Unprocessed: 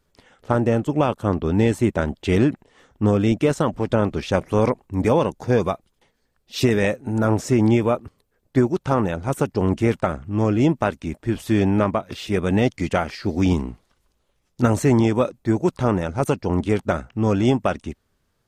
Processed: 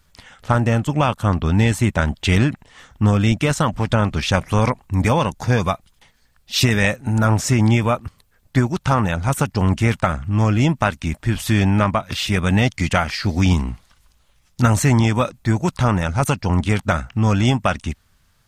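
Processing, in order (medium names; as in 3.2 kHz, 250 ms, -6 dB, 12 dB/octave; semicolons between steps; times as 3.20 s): peaking EQ 390 Hz -14 dB 1.6 oct; in parallel at +0.5 dB: compression, threshold -31 dBFS, peak gain reduction 13 dB; on the sum: trim +5.5 dB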